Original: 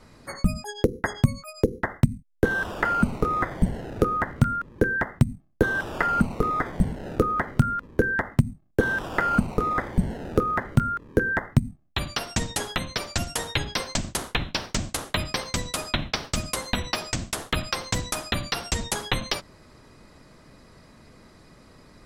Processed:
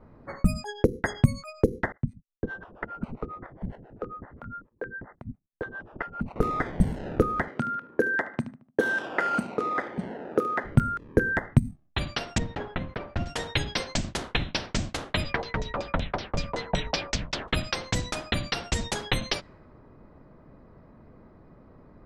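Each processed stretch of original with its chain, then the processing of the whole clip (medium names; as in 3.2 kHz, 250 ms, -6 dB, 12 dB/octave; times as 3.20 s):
1.92–6.36 s: gate -45 dBFS, range -15 dB + level held to a coarse grid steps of 11 dB + harmonic tremolo 7.4 Hz, depth 100%, crossover 460 Hz
7.48–10.64 s: high-pass 300 Hz + feedback delay 74 ms, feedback 44%, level -16.5 dB
12.38–13.26 s: send-on-delta sampling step -41.5 dBFS + tape spacing loss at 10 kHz 31 dB
15.24–17.48 s: peaking EQ 15 kHz -14 dB 0.67 oct + LFO low-pass saw down 5.3 Hz 670–7000 Hz + frequency shift -59 Hz
whole clip: dynamic bell 1.1 kHz, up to -5 dB, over -39 dBFS, Q 1.9; level-controlled noise filter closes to 930 Hz, open at -20.5 dBFS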